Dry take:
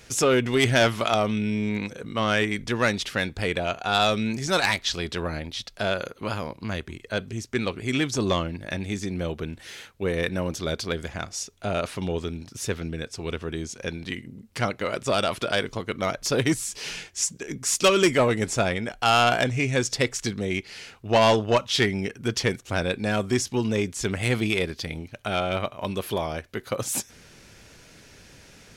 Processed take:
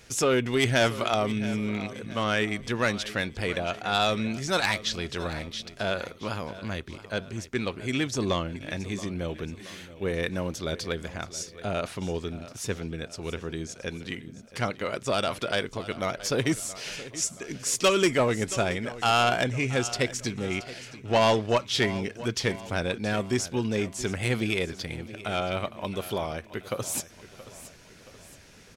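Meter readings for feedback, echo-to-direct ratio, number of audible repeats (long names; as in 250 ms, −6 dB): 49%, −15.0 dB, 4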